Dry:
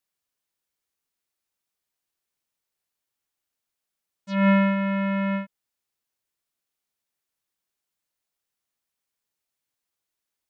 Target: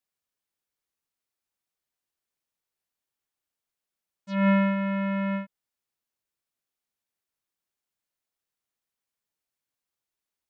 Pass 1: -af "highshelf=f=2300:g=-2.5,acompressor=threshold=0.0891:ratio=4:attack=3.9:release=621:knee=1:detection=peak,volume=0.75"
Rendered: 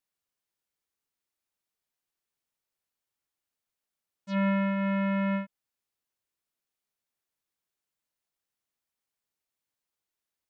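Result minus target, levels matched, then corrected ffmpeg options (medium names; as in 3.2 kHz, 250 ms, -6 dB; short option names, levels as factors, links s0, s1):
compression: peak gain reduction +6 dB
-af "highshelf=f=2300:g=-2.5,volume=0.75"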